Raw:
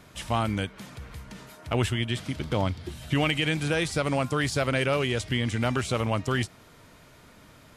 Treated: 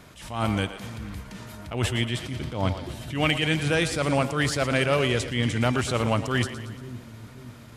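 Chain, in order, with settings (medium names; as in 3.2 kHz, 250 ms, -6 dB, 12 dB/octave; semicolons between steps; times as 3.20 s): two-band feedback delay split 310 Hz, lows 536 ms, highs 116 ms, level -12 dB; attacks held to a fixed rise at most 100 dB/s; trim +3 dB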